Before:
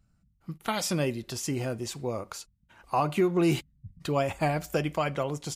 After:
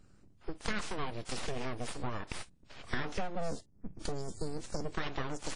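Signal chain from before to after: 3.35–4.94 s: elliptic band-stop 360–4800 Hz, stop band 40 dB; compression 4:1, threshold -41 dBFS, peak gain reduction 17 dB; 0.70–1.12 s: graphic EQ 250/500/1000/4000 Hz -10/+5/+6/-10 dB; full-wave rectifier; trim +8 dB; WMA 32 kbps 22.05 kHz

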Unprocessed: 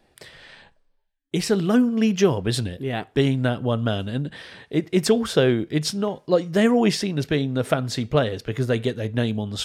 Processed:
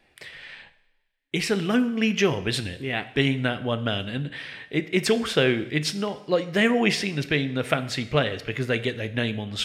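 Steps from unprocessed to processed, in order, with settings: peaking EQ 2.3 kHz +12 dB 1.1 oct; two-slope reverb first 0.81 s, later 3.5 s, from -26 dB, DRR 12 dB; trim -4 dB

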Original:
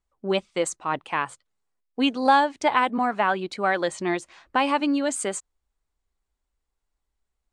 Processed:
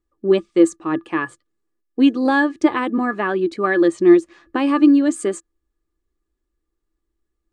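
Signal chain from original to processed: resonant low shelf 560 Hz +6.5 dB, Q 1.5; small resonant body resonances 330/1200/1700 Hz, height 17 dB, ringing for 90 ms; trim -3 dB

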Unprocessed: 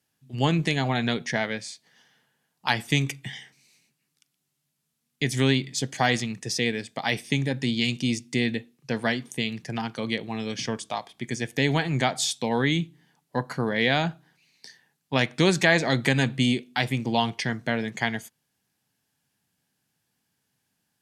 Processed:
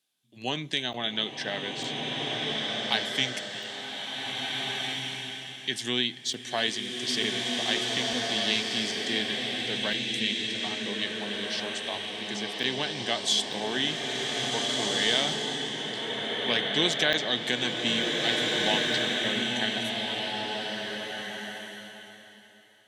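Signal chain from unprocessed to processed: treble shelf 5.1 kHz +4.5 dB; speed mistake 48 kHz file played as 44.1 kHz; high-pass 250 Hz 12 dB/octave; peaking EQ 3.5 kHz +13 dB 0.36 oct; band-stop 1.4 kHz, Q 11; crackling interface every 0.90 s, samples 512, zero, from 0.93 s; swelling reverb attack 1780 ms, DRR -1.5 dB; trim -7 dB

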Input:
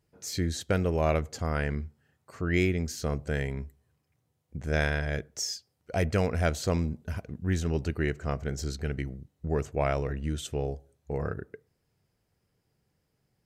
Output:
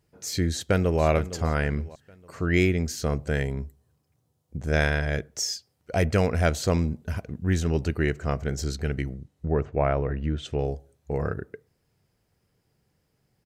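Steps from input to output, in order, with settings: 0.52–1.03 s: echo throw 460 ms, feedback 40%, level -13.5 dB; 3.43–4.68 s: peaking EQ 2.1 kHz -7.5 dB 1.1 oct; 9.13–10.59 s: low-pass that closes with the level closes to 1.8 kHz, closed at -26 dBFS; trim +4 dB

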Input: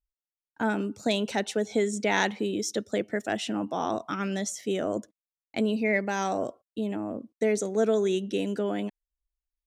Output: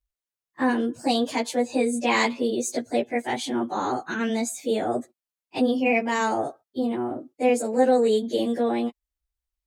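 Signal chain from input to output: frequency-domain pitch shifter +2.5 st; trim +6 dB

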